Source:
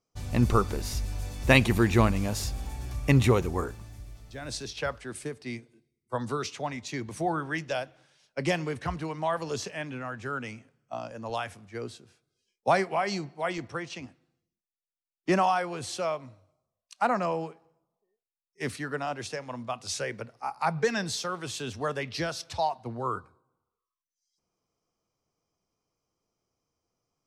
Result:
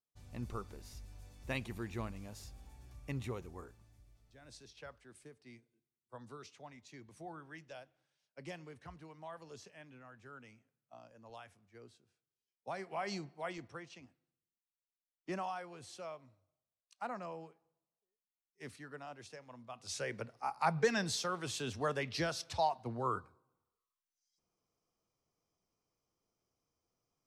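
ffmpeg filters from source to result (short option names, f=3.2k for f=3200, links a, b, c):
-af "volume=2.5dB,afade=t=in:st=12.76:d=0.36:silence=0.298538,afade=t=out:st=13.12:d=0.92:silence=0.446684,afade=t=in:st=19.69:d=0.52:silence=0.266073"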